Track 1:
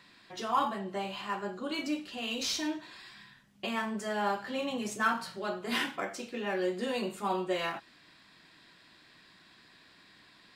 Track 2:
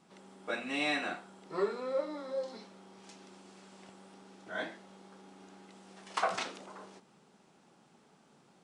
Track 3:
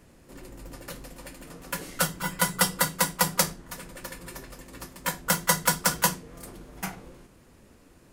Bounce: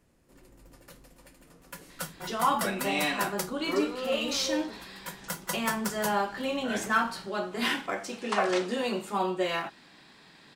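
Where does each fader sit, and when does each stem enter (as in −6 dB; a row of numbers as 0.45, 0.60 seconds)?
+3.0, +2.5, −11.5 decibels; 1.90, 2.15, 0.00 seconds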